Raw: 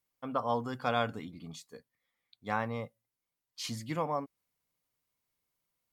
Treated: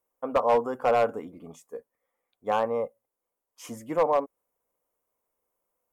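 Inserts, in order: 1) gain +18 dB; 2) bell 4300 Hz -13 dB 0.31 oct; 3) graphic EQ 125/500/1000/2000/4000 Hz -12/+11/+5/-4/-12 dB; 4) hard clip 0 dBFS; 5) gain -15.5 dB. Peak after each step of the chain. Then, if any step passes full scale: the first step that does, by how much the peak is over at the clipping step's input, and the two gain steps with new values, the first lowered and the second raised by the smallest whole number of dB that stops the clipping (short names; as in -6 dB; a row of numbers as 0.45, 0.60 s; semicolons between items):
+2.0, +2.0, +7.5, 0.0, -15.5 dBFS; step 1, 7.5 dB; step 1 +10 dB, step 5 -7.5 dB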